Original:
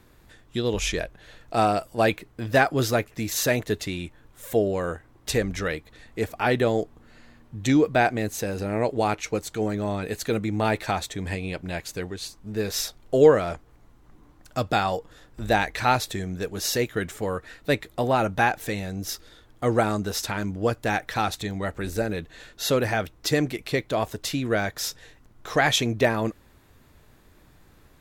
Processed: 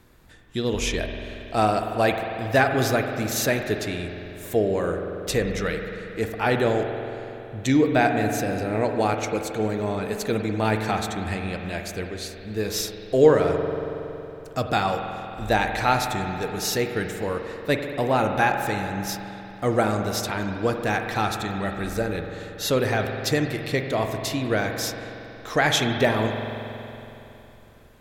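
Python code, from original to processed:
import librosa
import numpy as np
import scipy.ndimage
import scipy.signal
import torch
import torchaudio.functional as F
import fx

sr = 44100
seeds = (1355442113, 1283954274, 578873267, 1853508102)

y = fx.rev_spring(x, sr, rt60_s=3.2, pass_ms=(46,), chirp_ms=50, drr_db=4.5)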